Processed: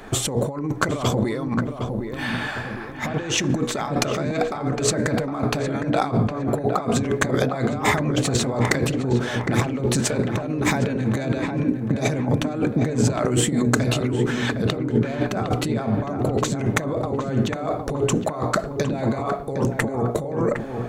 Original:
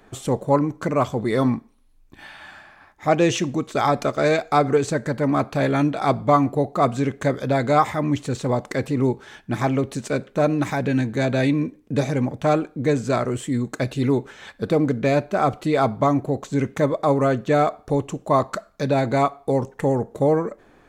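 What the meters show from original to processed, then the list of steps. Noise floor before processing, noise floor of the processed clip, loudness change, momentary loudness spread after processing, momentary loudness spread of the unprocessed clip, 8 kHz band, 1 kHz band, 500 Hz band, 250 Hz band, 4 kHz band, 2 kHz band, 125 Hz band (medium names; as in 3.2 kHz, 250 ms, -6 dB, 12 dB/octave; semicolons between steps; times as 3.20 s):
-54 dBFS, -31 dBFS, -1.5 dB, 5 LU, 6 LU, +9.5 dB, -4.5 dB, -3.0 dB, 0.0 dB, +6.0 dB, +2.5 dB, +1.5 dB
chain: hum notches 60/120/180/240/300/360/420/480 Hz; compressor with a negative ratio -30 dBFS, ratio -1; on a send: filtered feedback delay 760 ms, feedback 51%, low-pass 1.4 kHz, level -5 dB; on the sum: trim +5.5 dB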